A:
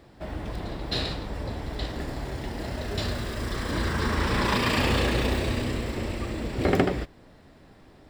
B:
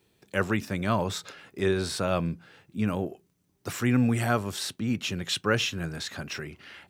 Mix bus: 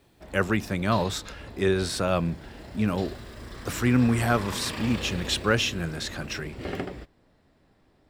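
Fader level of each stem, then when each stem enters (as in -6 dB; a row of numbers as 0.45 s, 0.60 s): -10.5 dB, +2.0 dB; 0.00 s, 0.00 s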